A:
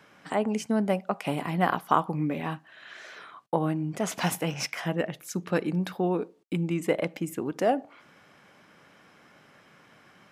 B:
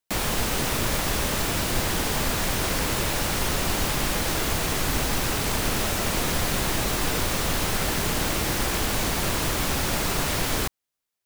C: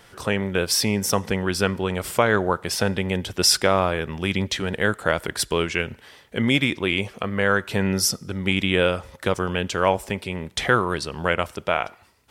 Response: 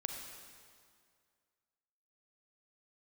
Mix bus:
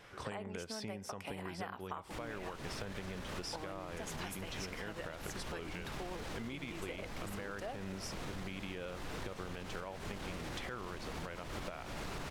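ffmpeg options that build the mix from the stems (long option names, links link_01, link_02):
-filter_complex "[0:a]highpass=frequency=830:poles=1,volume=-1.5dB[link_01];[1:a]alimiter=limit=-21.5dB:level=0:latency=1:release=157,asoftclip=type=tanh:threshold=-26.5dB,adelay=2000,volume=-0.5dB[link_02];[2:a]volume=-7.5dB[link_03];[link_02][link_03]amix=inputs=2:normalize=0,aemphasis=mode=reproduction:type=50fm,alimiter=limit=-20.5dB:level=0:latency=1:release=217,volume=0dB[link_04];[link_01][link_04]amix=inputs=2:normalize=0,acompressor=threshold=-39dB:ratio=12"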